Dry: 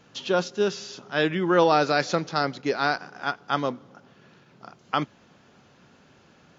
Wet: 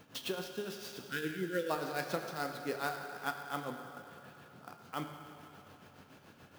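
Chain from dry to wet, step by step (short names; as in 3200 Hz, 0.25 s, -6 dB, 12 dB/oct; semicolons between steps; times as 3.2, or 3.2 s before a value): spectral repair 0.93–1.68, 550–1300 Hz before; compressor 2:1, threshold -40 dBFS, peak gain reduction 13.5 dB; tremolo 7 Hz, depth 75%; on a send at -4 dB: reverb RT60 3.1 s, pre-delay 5 ms; on the sum: clock jitter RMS 0.022 ms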